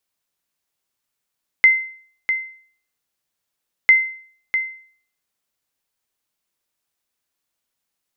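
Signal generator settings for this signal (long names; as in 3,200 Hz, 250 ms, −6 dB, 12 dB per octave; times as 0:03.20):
ping with an echo 2,070 Hz, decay 0.51 s, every 2.25 s, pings 2, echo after 0.65 s, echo −9 dB −4.5 dBFS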